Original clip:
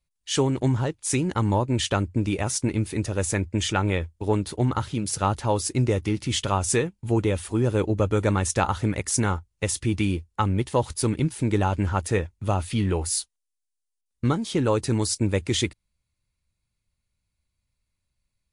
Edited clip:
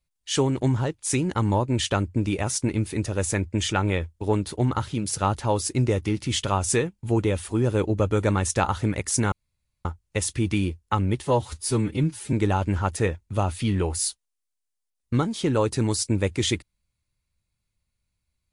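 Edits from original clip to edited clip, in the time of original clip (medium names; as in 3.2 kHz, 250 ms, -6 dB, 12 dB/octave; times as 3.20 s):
9.32 s: insert room tone 0.53 s
10.72–11.44 s: stretch 1.5×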